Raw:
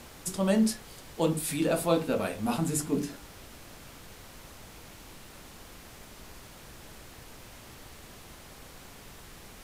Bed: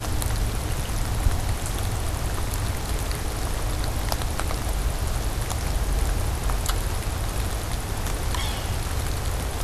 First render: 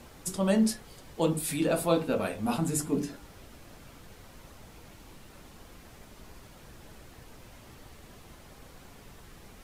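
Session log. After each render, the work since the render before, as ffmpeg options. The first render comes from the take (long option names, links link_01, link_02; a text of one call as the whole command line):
ffmpeg -i in.wav -af "afftdn=noise_reduction=6:noise_floor=-50" out.wav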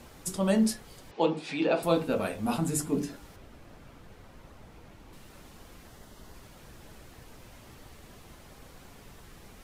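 ffmpeg -i in.wav -filter_complex "[0:a]asettb=1/sr,asplit=3[link_01][link_02][link_03];[link_01]atrim=end=1.114[link_04];[link_02]atrim=start=1.11:end=1.83,asetpts=PTS-STARTPTS,afade=type=in:duration=0.004:curve=qsin,afade=type=out:start_time=0.716:duration=0.004:curve=qsin,highpass=230,equalizer=frequency=410:width_type=q:width=4:gain=4,equalizer=frequency=830:width_type=q:width=4:gain=7,equalizer=frequency=2500:width_type=q:width=4:gain=5,lowpass=frequency=5100:width=0.5412,lowpass=frequency=5100:width=1.3066[link_05];[link_03]atrim=start=1.826[link_06];[link_04][link_05]acrossfade=duration=0.004:curve1=hsin:curve2=qsin[link_07];[link_07][link_06]acrossfade=duration=0.004:curve1=qsin:curve2=hsin,asettb=1/sr,asplit=3[link_08][link_09][link_10];[link_08]atrim=end=3.364[link_11];[link_09]atrim=start=3.36:end=5.13,asetpts=PTS-STARTPTS,afade=type=in:duration=0.004:curve=qsin,afade=type=out:start_time=1.766:duration=0.004:curve=qsin,highshelf=frequency=3500:gain=-10[link_12];[link_10]atrim=start=5.126[link_13];[link_11][link_12]acrossfade=duration=0.004:curve1=hsin:curve2=qsin[link_14];[link_14][link_13]acrossfade=duration=0.004:curve1=qsin:curve2=hsin,asettb=1/sr,asplit=3[link_15][link_16][link_17];[link_15]atrim=end=5.884[link_18];[link_16]atrim=start=5.88:end=6.34,asetpts=PTS-STARTPTS,afade=type=in:duration=0.004:curve=qsin,afade=type=out:start_time=0.456:duration=0.004:curve=qsin,bandreject=frequency=2400:width=5.7[link_19];[link_17]atrim=start=6.336[link_20];[link_18][link_19]acrossfade=duration=0.004:curve1=hsin:curve2=qsin[link_21];[link_21][link_20]acrossfade=duration=0.004:curve1=qsin:curve2=hsin" out.wav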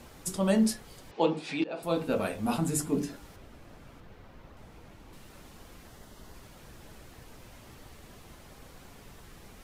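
ffmpeg -i in.wav -filter_complex "[0:a]asettb=1/sr,asplit=3[link_01][link_02][link_03];[link_01]atrim=end=4.004[link_04];[link_02]atrim=start=4:end=4.57,asetpts=PTS-STARTPTS,afade=type=in:duration=0.004:curve=qsin,afade=type=out:start_time=0.566:duration=0.004:curve=qsin,equalizer=frequency=9300:width_type=o:width=1.4:gain=-8.5[link_05];[link_03]atrim=start=4.566[link_06];[link_04][link_05]acrossfade=duration=0.004:curve1=hsin:curve2=qsin[link_07];[link_07][link_06]acrossfade=duration=0.004:curve1=qsin:curve2=hsin,asplit=2[link_08][link_09];[link_08]atrim=end=1.64,asetpts=PTS-STARTPTS,afade=type=out:start_time=1.636:duration=0.004:curve=hsin:silence=0.105925[link_10];[link_09]atrim=start=1.64,asetpts=PTS-STARTPTS,afade=type=in:duration=0.49:silence=0.105925[link_11];[link_10][link_11]concat=n=2:v=0:a=1" out.wav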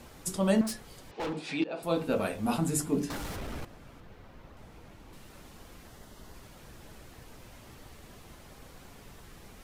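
ffmpeg -i in.wav -filter_complex "[0:a]asettb=1/sr,asplit=3[link_01][link_02][link_03];[link_01]atrim=end=0.614[link_04];[link_02]atrim=start=0.61:end=1.41,asetpts=PTS-STARTPTS,afade=type=in:duration=0.004:curve=qsin,afade=type=out:start_time=0.796:duration=0.004:curve=qsin,asoftclip=type=hard:threshold=-31.5dB[link_05];[link_03]atrim=start=1.406[link_06];[link_04][link_05]acrossfade=duration=0.004:curve1=hsin:curve2=qsin[link_07];[link_07][link_06]acrossfade=duration=0.004:curve1=qsin:curve2=hsin,asettb=1/sr,asplit=3[link_08][link_09][link_10];[link_08]atrim=end=3.104[link_11];[link_09]atrim=start=3.1:end=3.65,asetpts=PTS-STARTPTS,afade=type=in:duration=0.004:curve=qsin,afade=type=out:start_time=0.546:duration=0.004:curve=qsin,aeval=exprs='0.0237*sin(PI/2*3.55*val(0)/0.0237)':channel_layout=same[link_12];[link_10]atrim=start=3.646[link_13];[link_11][link_12]acrossfade=duration=0.004:curve1=hsin:curve2=qsin[link_14];[link_14][link_13]acrossfade=duration=0.004:curve1=qsin:curve2=hsin" out.wav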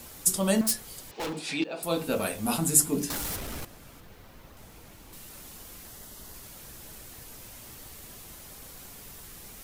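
ffmpeg -i in.wav -af "aemphasis=mode=production:type=75kf" out.wav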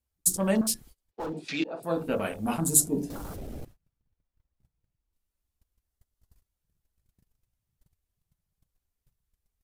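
ffmpeg -i in.wav -af "afwtdn=0.0141,agate=range=-27dB:threshold=-47dB:ratio=16:detection=peak" out.wav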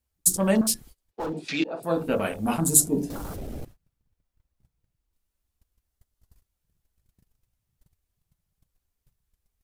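ffmpeg -i in.wav -af "volume=3.5dB,alimiter=limit=-3dB:level=0:latency=1" out.wav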